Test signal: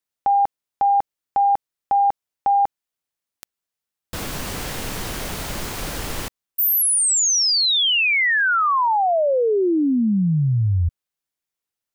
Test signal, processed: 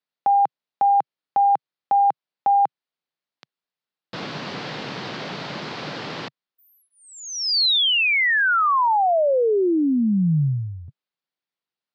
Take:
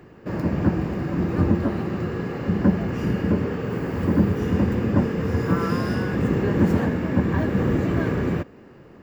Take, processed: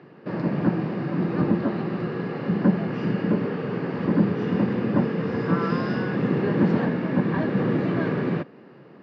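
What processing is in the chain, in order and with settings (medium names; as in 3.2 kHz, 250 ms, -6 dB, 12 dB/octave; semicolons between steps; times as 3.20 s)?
elliptic band-pass 140–4500 Hz, stop band 40 dB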